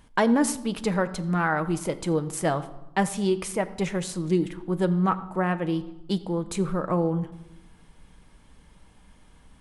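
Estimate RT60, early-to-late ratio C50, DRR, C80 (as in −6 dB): 0.95 s, 15.5 dB, 9.5 dB, 17.0 dB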